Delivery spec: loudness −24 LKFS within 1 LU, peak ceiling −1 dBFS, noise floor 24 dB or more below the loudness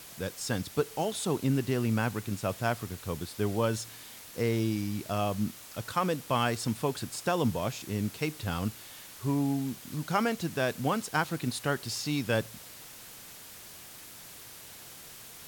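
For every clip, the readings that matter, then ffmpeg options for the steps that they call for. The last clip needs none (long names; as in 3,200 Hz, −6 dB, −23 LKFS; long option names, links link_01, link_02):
background noise floor −48 dBFS; target noise floor −56 dBFS; integrated loudness −31.5 LKFS; sample peak −13.5 dBFS; target loudness −24.0 LKFS
→ -af "afftdn=noise_reduction=8:noise_floor=-48"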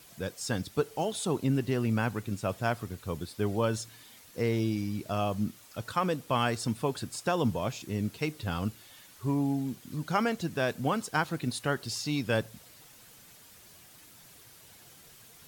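background noise floor −55 dBFS; target noise floor −56 dBFS
→ -af "afftdn=noise_reduction=6:noise_floor=-55"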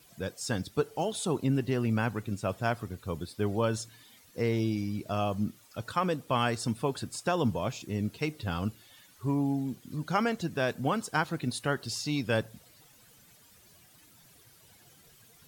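background noise floor −59 dBFS; integrated loudness −31.5 LKFS; sample peak −13.5 dBFS; target loudness −24.0 LKFS
→ -af "volume=7.5dB"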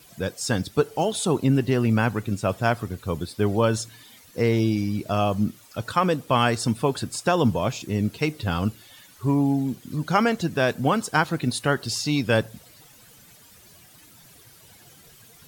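integrated loudness −24.0 LKFS; sample peak −6.0 dBFS; background noise floor −52 dBFS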